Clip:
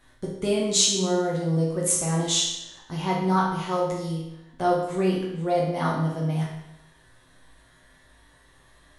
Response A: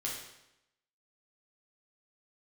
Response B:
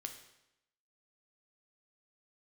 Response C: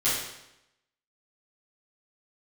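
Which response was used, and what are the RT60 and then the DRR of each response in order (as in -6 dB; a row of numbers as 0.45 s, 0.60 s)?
A; 0.85 s, 0.85 s, 0.85 s; -4.5 dB, 4.5 dB, -14.5 dB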